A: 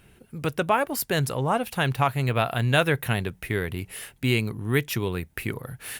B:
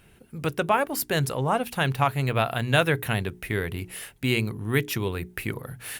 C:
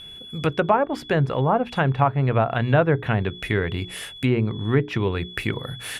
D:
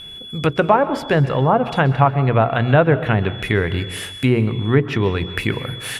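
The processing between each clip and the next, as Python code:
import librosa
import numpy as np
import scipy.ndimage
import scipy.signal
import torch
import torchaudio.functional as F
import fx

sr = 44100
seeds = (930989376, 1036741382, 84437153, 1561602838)

y1 = fx.hum_notches(x, sr, base_hz=60, count=7)
y2 = y1 + 10.0 ** (-43.0 / 20.0) * np.sin(2.0 * np.pi * 3400.0 * np.arange(len(y1)) / sr)
y2 = fx.env_lowpass_down(y2, sr, base_hz=1100.0, full_db=-20.0)
y2 = y2 * librosa.db_to_amplitude(5.0)
y3 = fx.rev_plate(y2, sr, seeds[0], rt60_s=0.93, hf_ratio=0.9, predelay_ms=115, drr_db=12.5)
y3 = y3 * librosa.db_to_amplitude(4.5)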